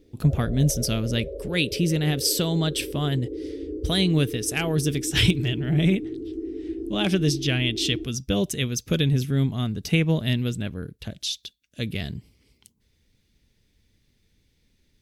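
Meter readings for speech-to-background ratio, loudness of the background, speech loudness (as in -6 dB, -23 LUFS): 10.0 dB, -34.5 LUFS, -24.5 LUFS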